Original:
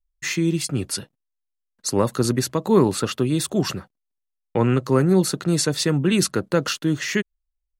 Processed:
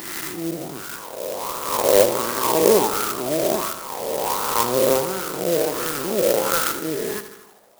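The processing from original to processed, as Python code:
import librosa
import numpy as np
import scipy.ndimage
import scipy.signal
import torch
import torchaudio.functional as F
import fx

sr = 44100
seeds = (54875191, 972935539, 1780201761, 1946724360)

p1 = fx.spec_swells(x, sr, rise_s=2.7)
p2 = fx.quant_dither(p1, sr, seeds[0], bits=6, dither='triangular')
p3 = p1 + (p2 * 10.0 ** (-3.5 / 20.0))
p4 = fx.wah_lfo(p3, sr, hz=1.4, low_hz=570.0, high_hz=1400.0, q=4.3)
p5 = fx.dynamic_eq(p4, sr, hz=1800.0, q=1.0, threshold_db=-36.0, ratio=4.0, max_db=-3)
p6 = p5 + fx.echo_feedback(p5, sr, ms=78, feedback_pct=60, wet_db=-12, dry=0)
p7 = fx.clock_jitter(p6, sr, seeds[1], jitter_ms=0.11)
y = p7 * 10.0 ** (5.0 / 20.0)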